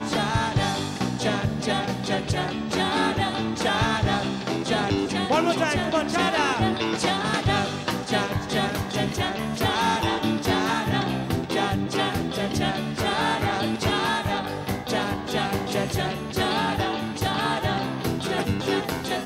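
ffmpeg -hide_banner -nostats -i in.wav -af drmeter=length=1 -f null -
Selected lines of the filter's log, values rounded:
Channel 1: DR: 9.0
Overall DR: 9.0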